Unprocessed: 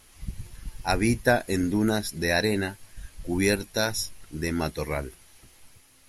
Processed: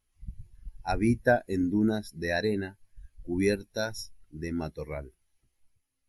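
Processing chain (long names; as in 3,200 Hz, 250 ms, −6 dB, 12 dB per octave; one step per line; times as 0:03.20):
every bin expanded away from the loudest bin 1.5 to 1
level −3.5 dB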